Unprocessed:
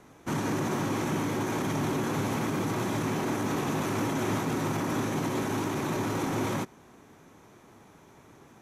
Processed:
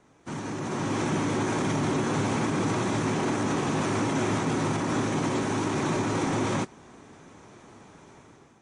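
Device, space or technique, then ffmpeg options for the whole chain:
low-bitrate web radio: -af "dynaudnorm=f=580:g=3:m=3.35,alimiter=limit=0.266:level=0:latency=1:release=357,volume=0.531" -ar 22050 -c:a libmp3lame -b:a 40k

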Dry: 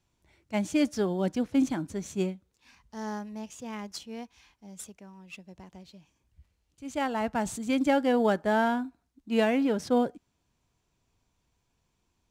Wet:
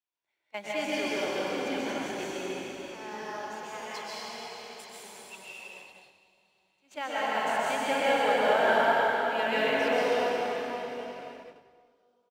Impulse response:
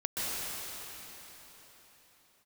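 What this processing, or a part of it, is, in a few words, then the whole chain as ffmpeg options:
cathedral: -filter_complex "[1:a]atrim=start_sample=2205[s0];[0:a][s0]afir=irnorm=-1:irlink=0,aemphasis=mode=production:type=riaa,agate=range=0.2:threshold=0.0126:ratio=16:detection=peak,acrossover=split=350 3800:gain=0.2 1 0.0794[s1][s2][s3];[s1][s2][s3]amix=inputs=3:normalize=0,asplit=6[s4][s5][s6][s7][s8][s9];[s5]adelay=96,afreqshift=-47,volume=0.266[s10];[s6]adelay=192,afreqshift=-94,volume=0.12[s11];[s7]adelay=288,afreqshift=-141,volume=0.0537[s12];[s8]adelay=384,afreqshift=-188,volume=0.0243[s13];[s9]adelay=480,afreqshift=-235,volume=0.011[s14];[s4][s10][s11][s12][s13][s14]amix=inputs=6:normalize=0,volume=0.708"

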